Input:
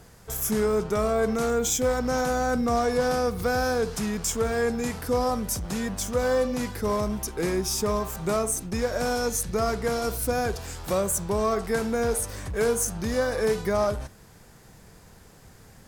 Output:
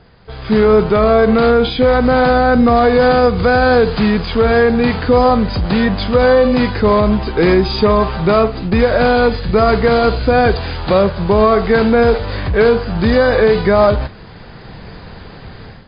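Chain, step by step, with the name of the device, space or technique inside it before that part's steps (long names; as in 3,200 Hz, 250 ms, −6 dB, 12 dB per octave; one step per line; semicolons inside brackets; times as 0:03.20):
low-bitrate web radio (automatic gain control gain up to 14 dB; brickwall limiter −6 dBFS, peak gain reduction 4 dB; level +4.5 dB; MP3 24 kbit/s 11,025 Hz)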